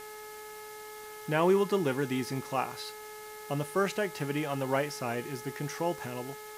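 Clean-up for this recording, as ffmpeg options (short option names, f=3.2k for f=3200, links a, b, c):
-af "adeclick=t=4,bandreject=f=425.9:t=h:w=4,bandreject=f=851.8:t=h:w=4,bandreject=f=1.2777k:t=h:w=4,bandreject=f=1.7036k:t=h:w=4,bandreject=f=2.1295k:t=h:w=4,afftdn=nr=30:nf=-45"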